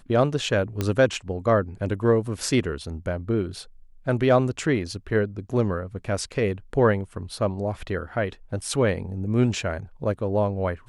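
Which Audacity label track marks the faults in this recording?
0.810000	0.810000	pop -11 dBFS

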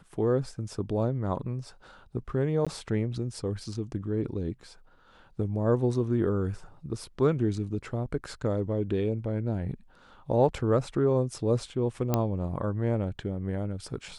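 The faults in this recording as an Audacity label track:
2.650000	2.670000	gap 16 ms
12.140000	12.140000	pop -11 dBFS

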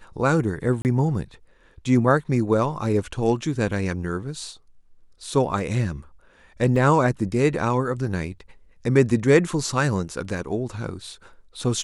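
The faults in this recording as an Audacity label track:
0.820000	0.850000	gap 29 ms
6.760000	6.760000	gap 3.6 ms

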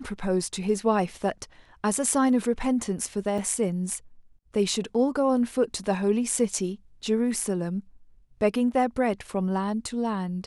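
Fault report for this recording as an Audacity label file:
3.380000	3.380000	gap 4.1 ms

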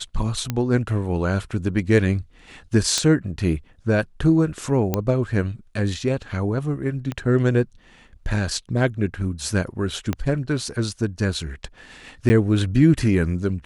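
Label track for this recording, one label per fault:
0.500000	0.500000	pop -10 dBFS
2.980000	2.980000	pop -6 dBFS
4.940000	4.940000	pop -7 dBFS
7.120000	7.120000	pop -15 dBFS
10.130000	10.130000	pop -11 dBFS
12.290000	12.300000	gap 10 ms

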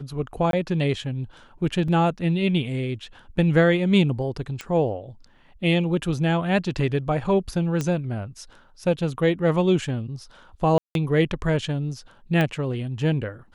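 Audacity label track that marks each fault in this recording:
0.510000	0.530000	gap 22 ms
1.880000	1.880000	gap 3.7 ms
4.610000	4.610000	pop -17 dBFS
7.810000	7.810000	pop -13 dBFS
10.780000	10.950000	gap 0.172 s
12.410000	12.410000	pop -12 dBFS

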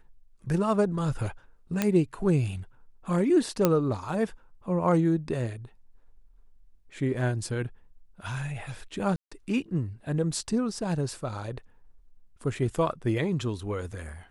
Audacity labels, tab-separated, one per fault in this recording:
1.820000	1.820000	pop -10 dBFS
3.650000	3.650000	pop -7 dBFS
9.160000	9.310000	gap 0.155 s

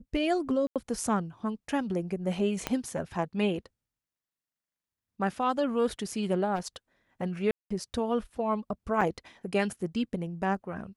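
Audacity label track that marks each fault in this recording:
0.670000	0.760000	gap 87 ms
2.670000	2.670000	pop -13 dBFS
6.550000	6.760000	clipped -28.5 dBFS
7.510000	7.710000	gap 0.195 s
9.010000	9.010000	gap 3.4 ms

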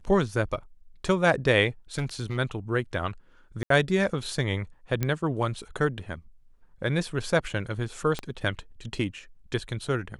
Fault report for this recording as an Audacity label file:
1.980000	2.390000	clipped -23.5 dBFS
3.630000	3.700000	gap 73 ms
5.030000	5.030000	pop -12 dBFS
8.190000	8.190000	pop -17 dBFS

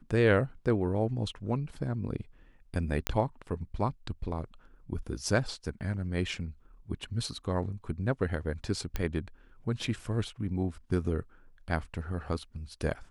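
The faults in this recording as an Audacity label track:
3.070000	3.070000	pop -11 dBFS
8.960000	8.960000	pop -17 dBFS

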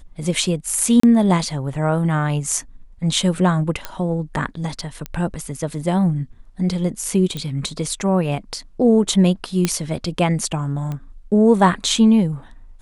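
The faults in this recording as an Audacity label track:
1.000000	1.030000	gap 34 ms
3.850000	3.850000	pop -10 dBFS
5.060000	5.060000	pop -14 dBFS
7.370000	7.370000	pop -14 dBFS
9.650000	9.650000	pop -4 dBFS
10.920000	10.920000	pop -17 dBFS

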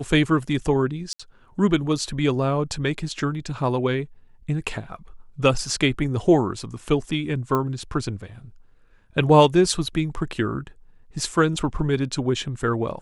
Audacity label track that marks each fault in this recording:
1.130000	1.200000	gap 65 ms
7.550000	7.550000	pop -12 dBFS

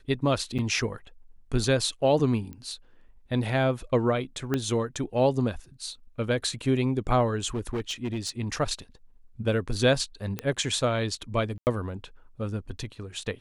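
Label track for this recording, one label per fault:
0.580000	0.590000	gap 6.8 ms
2.530000	2.530000	pop -28 dBFS
4.540000	4.540000	pop -13 dBFS
7.550000	8.300000	clipped -25.5 dBFS
10.390000	10.390000	pop -15 dBFS
11.580000	11.670000	gap 89 ms

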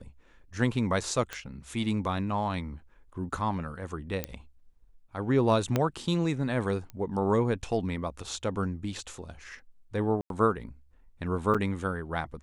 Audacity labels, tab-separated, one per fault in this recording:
1.330000	1.330000	pop -20 dBFS
4.240000	4.240000	pop -14 dBFS
5.760000	5.760000	pop -12 dBFS
6.900000	6.900000	pop -28 dBFS
10.210000	10.300000	gap 92 ms
11.540000	11.550000	gap 6.3 ms

